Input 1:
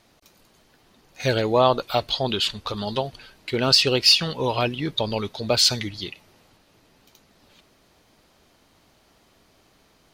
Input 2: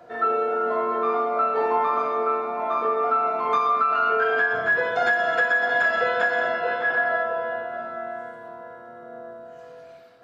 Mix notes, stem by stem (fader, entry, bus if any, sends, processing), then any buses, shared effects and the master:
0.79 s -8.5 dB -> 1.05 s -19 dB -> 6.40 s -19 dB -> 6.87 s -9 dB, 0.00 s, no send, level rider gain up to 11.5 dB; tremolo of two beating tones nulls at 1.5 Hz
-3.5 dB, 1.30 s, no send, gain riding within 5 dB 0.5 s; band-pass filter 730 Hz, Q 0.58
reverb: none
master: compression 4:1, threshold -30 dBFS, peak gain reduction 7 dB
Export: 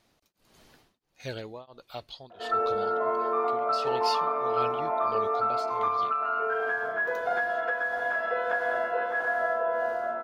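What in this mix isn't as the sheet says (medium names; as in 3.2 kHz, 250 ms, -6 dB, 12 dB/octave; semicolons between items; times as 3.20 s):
stem 2: entry 1.30 s -> 2.30 s; master: missing compression 4:1, threshold -30 dBFS, peak gain reduction 7 dB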